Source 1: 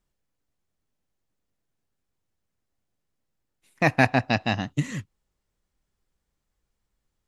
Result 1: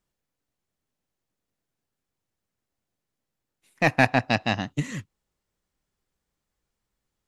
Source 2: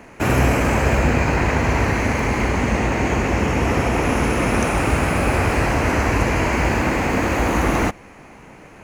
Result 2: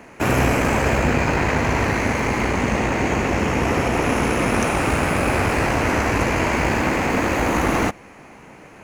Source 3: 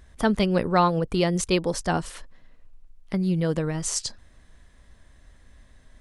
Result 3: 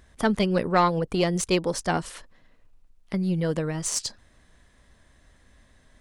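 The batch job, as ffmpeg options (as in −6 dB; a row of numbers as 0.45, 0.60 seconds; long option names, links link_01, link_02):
-af "aeval=exprs='0.708*(cos(1*acos(clip(val(0)/0.708,-1,1)))-cos(1*PI/2))+0.0398*(cos(6*acos(clip(val(0)/0.708,-1,1)))-cos(6*PI/2))':channel_layout=same,lowshelf=frequency=72:gain=-8.5"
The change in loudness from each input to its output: 0.0, −0.5, −1.0 LU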